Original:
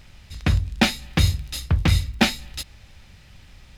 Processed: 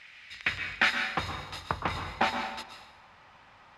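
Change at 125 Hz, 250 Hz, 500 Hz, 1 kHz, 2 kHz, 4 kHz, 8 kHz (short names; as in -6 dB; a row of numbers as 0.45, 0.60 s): -21.0, -16.0, -6.5, +0.5, -0.5, -8.5, -15.5 dB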